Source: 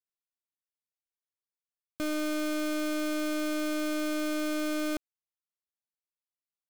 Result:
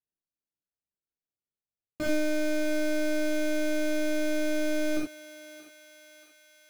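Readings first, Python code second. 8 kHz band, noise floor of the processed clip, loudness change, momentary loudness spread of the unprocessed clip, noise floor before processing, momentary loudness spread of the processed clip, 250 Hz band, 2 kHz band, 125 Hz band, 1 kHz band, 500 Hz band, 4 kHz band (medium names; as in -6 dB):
+0.5 dB, under -85 dBFS, +2.0 dB, 3 LU, under -85 dBFS, 17 LU, +1.0 dB, +3.0 dB, no reading, -9.0 dB, +5.0 dB, -0.5 dB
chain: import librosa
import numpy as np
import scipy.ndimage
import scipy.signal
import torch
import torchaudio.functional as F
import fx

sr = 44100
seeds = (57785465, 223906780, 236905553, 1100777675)

y = fx.wiener(x, sr, points=41)
y = fx.dereverb_blind(y, sr, rt60_s=0.77)
y = fx.high_shelf(y, sr, hz=5300.0, db=-5.5)
y = fx.echo_thinned(y, sr, ms=631, feedback_pct=65, hz=810.0, wet_db=-12.5)
y = fx.rev_gated(y, sr, seeds[0], gate_ms=110, shape='flat', drr_db=-6.0)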